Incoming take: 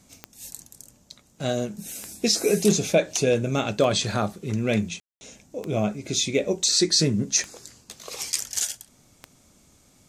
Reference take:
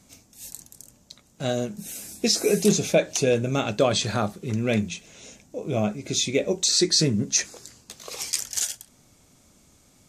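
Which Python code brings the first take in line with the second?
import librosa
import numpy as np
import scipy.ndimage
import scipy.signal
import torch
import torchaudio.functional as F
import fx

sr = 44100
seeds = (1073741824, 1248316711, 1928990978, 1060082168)

y = fx.fix_declick_ar(x, sr, threshold=10.0)
y = fx.fix_ambience(y, sr, seeds[0], print_start_s=9.49, print_end_s=9.99, start_s=5.0, end_s=5.21)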